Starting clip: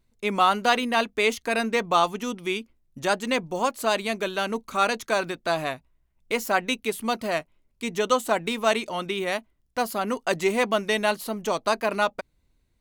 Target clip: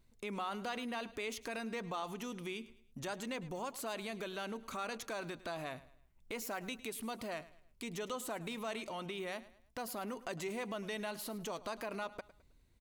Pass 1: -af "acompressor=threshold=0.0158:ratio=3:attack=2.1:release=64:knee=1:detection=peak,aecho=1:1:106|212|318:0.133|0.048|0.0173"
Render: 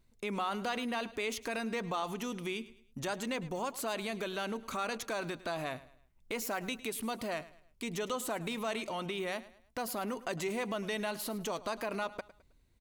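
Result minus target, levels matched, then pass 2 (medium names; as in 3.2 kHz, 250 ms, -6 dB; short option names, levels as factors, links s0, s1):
compression: peak gain reduction -5 dB
-af "acompressor=threshold=0.00668:ratio=3:attack=2.1:release=64:knee=1:detection=peak,aecho=1:1:106|212|318:0.133|0.048|0.0173"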